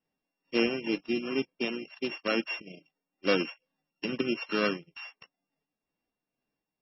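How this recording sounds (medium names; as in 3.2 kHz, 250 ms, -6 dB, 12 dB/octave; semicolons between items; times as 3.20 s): a buzz of ramps at a fixed pitch in blocks of 16 samples; tremolo triangle 2.2 Hz, depth 55%; MP3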